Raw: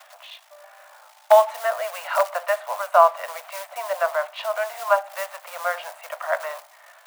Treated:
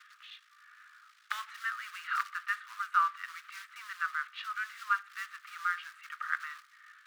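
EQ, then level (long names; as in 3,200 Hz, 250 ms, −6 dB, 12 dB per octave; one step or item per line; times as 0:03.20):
Chebyshev high-pass with heavy ripple 1,200 Hz, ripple 3 dB
spectral tilt −3.5 dB per octave
high-shelf EQ 7,000 Hz −5.5 dB
0.0 dB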